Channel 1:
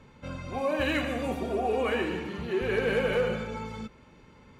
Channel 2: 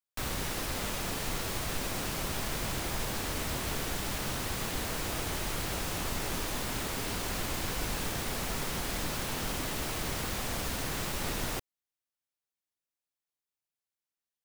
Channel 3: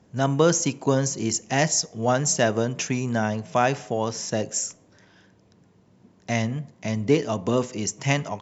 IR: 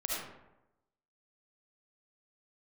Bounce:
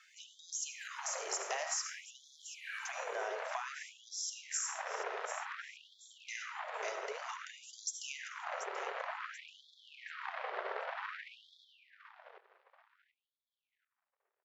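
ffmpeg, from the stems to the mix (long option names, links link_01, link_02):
-filter_complex "[0:a]volume=-0.5dB,asplit=2[link_01][link_02];[link_02]volume=-23dB[link_03];[1:a]lowpass=frequency=1900:width=0.5412,lowpass=frequency=1900:width=1.3066,aeval=exprs='0.0794*(cos(1*acos(clip(val(0)/0.0794,-1,1)))-cos(1*PI/2))+0.0141*(cos(3*acos(clip(val(0)/0.0794,-1,1)))-cos(3*PI/2))+0.0112*(cos(4*acos(clip(val(0)/0.0794,-1,1)))-cos(4*PI/2))+0.00316*(cos(5*acos(clip(val(0)/0.0794,-1,1)))-cos(5*PI/2))+0.00562*(cos(7*acos(clip(val(0)/0.0794,-1,1)))-cos(7*PI/2))':channel_layout=same,adelay=50,volume=3dB,asplit=3[link_04][link_05][link_06];[link_05]volume=-3.5dB[link_07];[link_06]volume=-16.5dB[link_08];[2:a]acompressor=threshold=-24dB:ratio=6,volume=-1.5dB,asplit=3[link_09][link_10][link_11];[link_09]atrim=end=2.22,asetpts=PTS-STARTPTS,afade=type=out:start_time=2.216:duration=0.004:curve=hsin[link_12];[link_10]atrim=start=2.22:end=2.85,asetpts=PTS-STARTPTS,volume=0[link_13];[link_11]atrim=start=2.85,asetpts=PTS-STARTPTS,afade=type=in:duration=0.004:curve=hsin[link_14];[link_12][link_13][link_14]concat=n=3:v=0:a=1,asplit=4[link_15][link_16][link_17][link_18];[link_16]volume=-8.5dB[link_19];[link_17]volume=-14.5dB[link_20];[link_18]apad=whole_len=202642[link_21];[link_01][link_21]sidechaincompress=threshold=-42dB:ratio=4:attack=16:release=390[link_22];[3:a]atrim=start_sample=2205[link_23];[link_07][link_19]amix=inputs=2:normalize=0[link_24];[link_24][link_23]afir=irnorm=-1:irlink=0[link_25];[link_03][link_08][link_20]amix=inputs=3:normalize=0,aecho=0:1:734|1468|2202|2936:1|0.3|0.09|0.027[link_26];[link_22][link_04][link_15][link_25][link_26]amix=inputs=5:normalize=0,acrossover=split=150[link_27][link_28];[link_28]acompressor=threshold=-36dB:ratio=3[link_29];[link_27][link_29]amix=inputs=2:normalize=0,afftfilt=real='re*gte(b*sr/1024,350*pow(3300/350,0.5+0.5*sin(2*PI*0.54*pts/sr)))':imag='im*gte(b*sr/1024,350*pow(3300/350,0.5+0.5*sin(2*PI*0.54*pts/sr)))':win_size=1024:overlap=0.75"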